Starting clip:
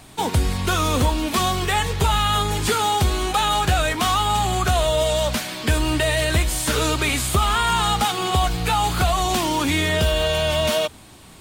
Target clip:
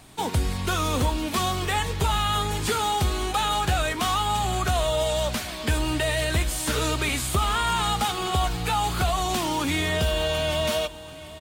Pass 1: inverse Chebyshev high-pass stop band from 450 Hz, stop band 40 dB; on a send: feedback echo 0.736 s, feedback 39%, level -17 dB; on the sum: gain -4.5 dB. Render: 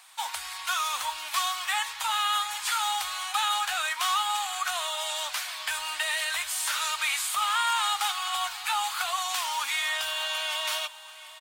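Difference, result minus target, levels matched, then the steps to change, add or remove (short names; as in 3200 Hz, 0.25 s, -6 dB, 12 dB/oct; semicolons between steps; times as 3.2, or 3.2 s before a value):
500 Hz band -14.5 dB
remove: inverse Chebyshev high-pass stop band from 450 Hz, stop band 40 dB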